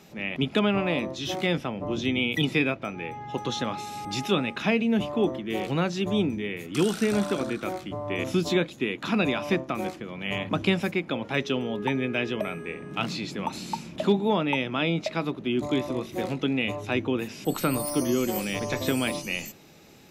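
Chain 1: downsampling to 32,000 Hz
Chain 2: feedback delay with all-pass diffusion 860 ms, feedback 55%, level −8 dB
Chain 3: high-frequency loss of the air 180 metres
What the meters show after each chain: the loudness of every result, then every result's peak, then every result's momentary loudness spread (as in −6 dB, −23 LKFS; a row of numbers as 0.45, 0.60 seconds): −27.5, −27.0, −28.5 LKFS; −11.5, −11.0, −12.0 dBFS; 8, 6, 8 LU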